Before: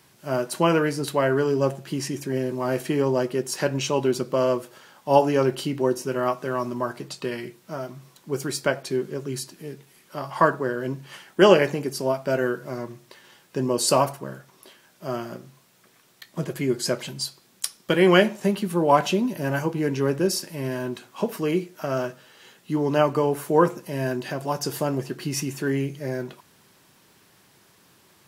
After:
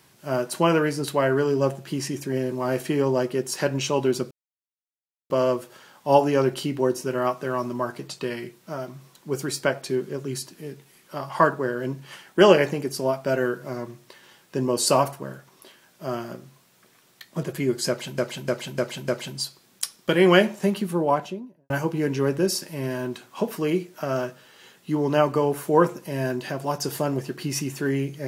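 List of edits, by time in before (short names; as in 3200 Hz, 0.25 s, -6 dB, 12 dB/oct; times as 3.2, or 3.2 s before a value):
4.31 insert silence 0.99 s
16.89–17.19 loop, 5 plays
18.55–19.51 studio fade out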